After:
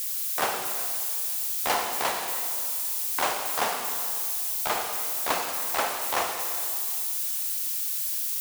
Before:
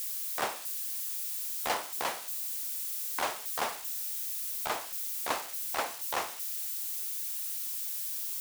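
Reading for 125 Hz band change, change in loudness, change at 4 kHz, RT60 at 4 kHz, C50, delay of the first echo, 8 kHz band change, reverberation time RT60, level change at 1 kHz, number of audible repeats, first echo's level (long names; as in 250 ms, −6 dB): +7.0 dB, +6.5 dB, +6.5 dB, 2.2 s, 4.0 dB, no echo audible, +6.5 dB, 2.3 s, +7.0 dB, no echo audible, no echo audible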